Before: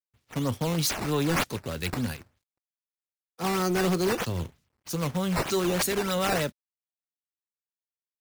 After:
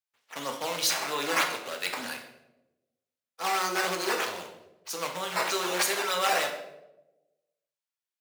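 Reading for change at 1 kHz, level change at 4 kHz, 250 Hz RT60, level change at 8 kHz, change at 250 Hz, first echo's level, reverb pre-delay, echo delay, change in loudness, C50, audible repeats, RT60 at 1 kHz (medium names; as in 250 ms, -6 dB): +2.5 dB, +3.0 dB, 1.2 s, +1.5 dB, -12.0 dB, no echo, 4 ms, no echo, -1.0 dB, 6.5 dB, no echo, 0.80 s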